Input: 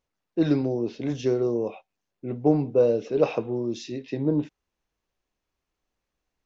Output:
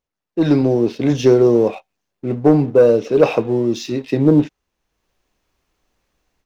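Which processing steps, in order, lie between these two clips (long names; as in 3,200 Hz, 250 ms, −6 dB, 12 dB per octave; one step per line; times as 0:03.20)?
leveller curve on the samples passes 1
automatic gain control gain up to 16 dB
level −1 dB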